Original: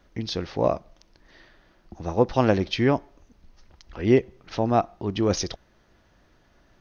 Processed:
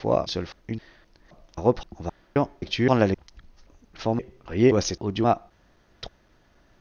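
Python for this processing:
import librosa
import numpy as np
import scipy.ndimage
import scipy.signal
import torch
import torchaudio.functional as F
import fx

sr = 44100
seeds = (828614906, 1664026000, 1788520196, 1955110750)

y = fx.block_reorder(x, sr, ms=262.0, group=3)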